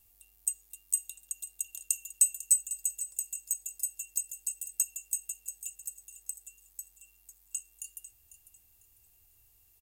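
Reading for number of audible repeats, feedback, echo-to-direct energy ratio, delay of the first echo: 2, 28%, −13.0 dB, 498 ms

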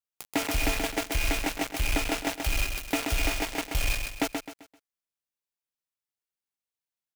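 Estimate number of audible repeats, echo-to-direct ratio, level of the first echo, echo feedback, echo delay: 4, −5.0 dB, −5.5 dB, 34%, 130 ms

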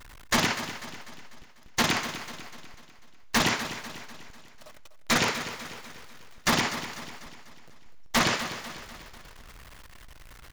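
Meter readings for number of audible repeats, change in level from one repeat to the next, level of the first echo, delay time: 4, −6.0 dB, −12.0 dB, 247 ms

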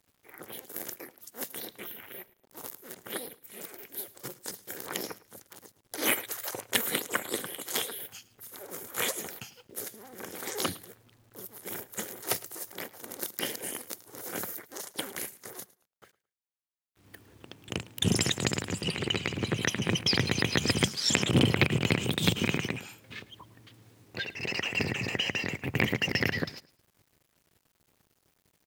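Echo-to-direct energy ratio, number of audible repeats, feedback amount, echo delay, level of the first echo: −20.5 dB, 2, 25%, 108 ms, −21.0 dB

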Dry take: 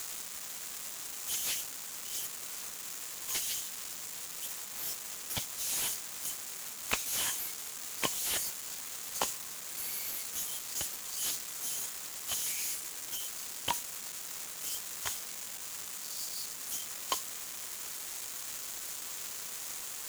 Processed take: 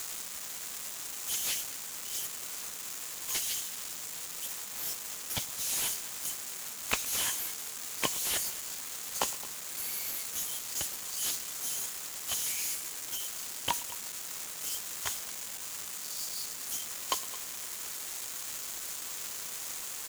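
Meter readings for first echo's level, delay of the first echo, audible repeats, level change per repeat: −20.0 dB, 111 ms, 2, repeats not evenly spaced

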